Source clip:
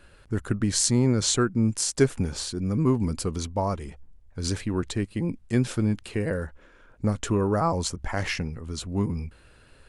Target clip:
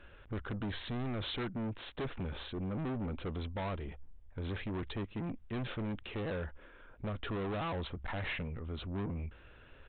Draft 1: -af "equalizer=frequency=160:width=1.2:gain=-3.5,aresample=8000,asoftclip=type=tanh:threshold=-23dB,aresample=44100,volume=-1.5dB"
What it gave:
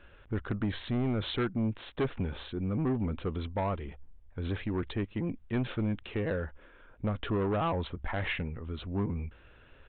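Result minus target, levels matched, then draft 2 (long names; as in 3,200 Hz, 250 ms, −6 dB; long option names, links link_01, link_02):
soft clipping: distortion −6 dB
-af "equalizer=frequency=160:width=1.2:gain=-3.5,aresample=8000,asoftclip=type=tanh:threshold=-33dB,aresample=44100,volume=-1.5dB"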